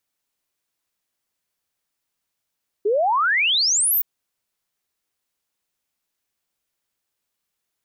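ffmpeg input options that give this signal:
ffmpeg -f lavfi -i "aevalsrc='0.158*clip(min(t,1.17-t)/0.01,0,1)*sin(2*PI*390*1.17/log(16000/390)*(exp(log(16000/390)*t/1.17)-1))':duration=1.17:sample_rate=44100" out.wav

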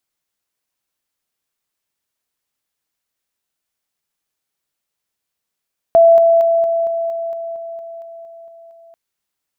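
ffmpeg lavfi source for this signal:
ffmpeg -f lavfi -i "aevalsrc='pow(10,(-5-3*floor(t/0.23))/20)*sin(2*PI*668*t)':duration=2.99:sample_rate=44100" out.wav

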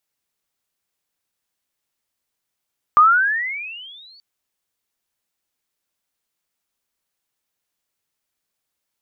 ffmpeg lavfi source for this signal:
ffmpeg -f lavfi -i "aevalsrc='pow(10,(-6.5-39*t/1.23)/20)*sin(2*PI*1180*1.23/(23.5*log(2)/12)*(exp(23.5*log(2)/12*t/1.23)-1))':duration=1.23:sample_rate=44100" out.wav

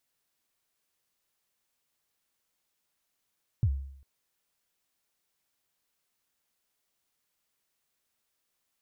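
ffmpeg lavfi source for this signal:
ffmpeg -f lavfi -i "aevalsrc='0.112*pow(10,-3*t/0.68)*sin(2*PI*(130*0.063/log(68/130)*(exp(log(68/130)*min(t,0.063)/0.063)-1)+68*max(t-0.063,0)))':duration=0.4:sample_rate=44100" out.wav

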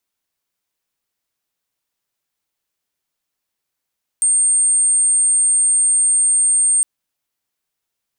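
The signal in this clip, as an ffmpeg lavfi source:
ffmpeg -f lavfi -i "sine=frequency=8640:duration=2.61:sample_rate=44100,volume=6.56dB" out.wav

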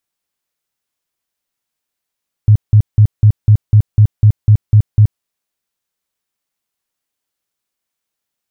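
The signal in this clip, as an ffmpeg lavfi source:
ffmpeg -f lavfi -i "aevalsrc='0.708*sin(2*PI*106*mod(t,0.25))*lt(mod(t,0.25),8/106)':duration=2.75:sample_rate=44100" out.wav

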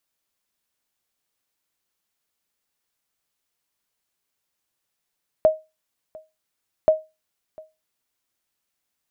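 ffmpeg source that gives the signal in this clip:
ffmpeg -f lavfi -i "aevalsrc='0.422*(sin(2*PI*628*mod(t,1.43))*exp(-6.91*mod(t,1.43)/0.24)+0.0562*sin(2*PI*628*max(mod(t,1.43)-0.7,0))*exp(-6.91*max(mod(t,1.43)-0.7,0)/0.24))':duration=2.86:sample_rate=44100" out.wav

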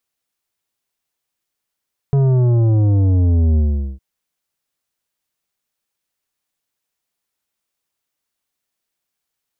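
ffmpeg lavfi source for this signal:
ffmpeg -f lavfi -i "aevalsrc='0.251*clip((1.86-t)/0.42,0,1)*tanh(3.16*sin(2*PI*140*1.86/log(65/140)*(exp(log(65/140)*t/1.86)-1)))/tanh(3.16)':duration=1.86:sample_rate=44100" out.wav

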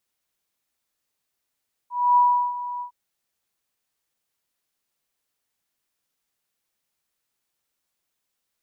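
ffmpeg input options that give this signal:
ffmpeg -f lavfi -i "aevalsrc='0.237*sin(2*PI*977*t)':duration=1.009:sample_rate=44100,afade=type=in:duration=0.264,afade=type=out:start_time=0.264:duration=0.367:silence=0.178,afade=type=out:start_time=0.91:duration=0.099" out.wav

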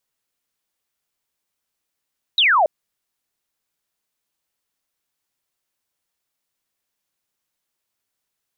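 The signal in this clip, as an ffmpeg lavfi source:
ffmpeg -f lavfi -i "aevalsrc='0.251*clip(t/0.002,0,1)*clip((0.28-t)/0.002,0,1)*sin(2*PI*4000*0.28/log(570/4000)*(exp(log(570/4000)*t/0.28)-1))':duration=0.28:sample_rate=44100" out.wav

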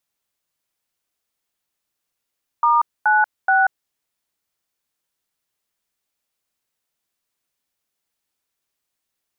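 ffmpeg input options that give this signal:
ffmpeg -f lavfi -i "aevalsrc='0.178*clip(min(mod(t,0.426),0.186-mod(t,0.426))/0.002,0,1)*(eq(floor(t/0.426),0)*(sin(2*PI*941*mod(t,0.426))+sin(2*PI*1209*mod(t,0.426)))+eq(floor(t/0.426),1)*(sin(2*PI*852*mod(t,0.426))+sin(2*PI*1477*mod(t,0.426)))+eq(floor(t/0.426),2)*(sin(2*PI*770*mod(t,0.426))+sin(2*PI*1477*mod(t,0.426))))':duration=1.278:sample_rate=44100" out.wav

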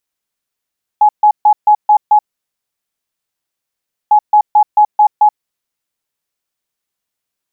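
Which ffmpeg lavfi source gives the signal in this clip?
ffmpeg -f lavfi -i "aevalsrc='0.631*sin(2*PI*842*t)*clip(min(mod(mod(t,3.1),0.22),0.08-mod(mod(t,3.1),0.22))/0.005,0,1)*lt(mod(t,3.1),1.32)':duration=6.2:sample_rate=44100" out.wav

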